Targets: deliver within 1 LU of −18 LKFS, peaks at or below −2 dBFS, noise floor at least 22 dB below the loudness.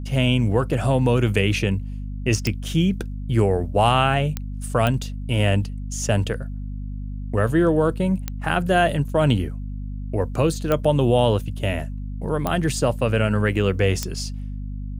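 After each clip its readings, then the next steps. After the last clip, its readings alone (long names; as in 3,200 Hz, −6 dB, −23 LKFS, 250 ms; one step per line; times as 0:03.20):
number of clicks 7; mains hum 50 Hz; hum harmonics up to 250 Hz; level of the hum −27 dBFS; integrated loudness −22.0 LKFS; sample peak −4.0 dBFS; target loudness −18.0 LKFS
→ click removal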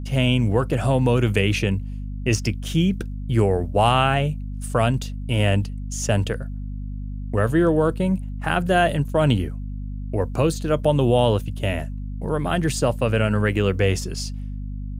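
number of clicks 0; mains hum 50 Hz; hum harmonics up to 250 Hz; level of the hum −27 dBFS
→ hum removal 50 Hz, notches 5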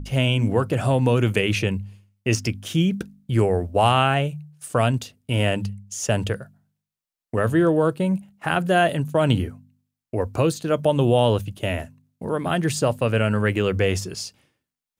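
mains hum none found; integrated loudness −22.5 LKFS; sample peak −4.0 dBFS; target loudness −18.0 LKFS
→ level +4.5 dB
brickwall limiter −2 dBFS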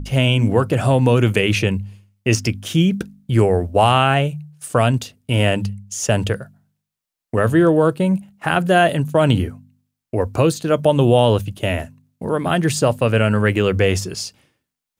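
integrated loudness −18.0 LKFS; sample peak −2.0 dBFS; background noise floor −83 dBFS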